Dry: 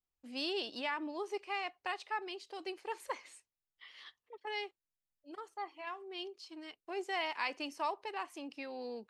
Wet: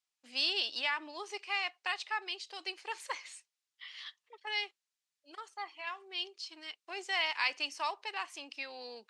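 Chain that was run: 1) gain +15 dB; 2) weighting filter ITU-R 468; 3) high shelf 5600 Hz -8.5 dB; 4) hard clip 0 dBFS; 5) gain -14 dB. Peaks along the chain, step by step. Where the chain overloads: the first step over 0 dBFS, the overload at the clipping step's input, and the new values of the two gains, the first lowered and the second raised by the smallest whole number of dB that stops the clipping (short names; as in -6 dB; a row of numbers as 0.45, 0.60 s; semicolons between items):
-7.0, -0.5, -2.5, -2.5, -16.5 dBFS; no overload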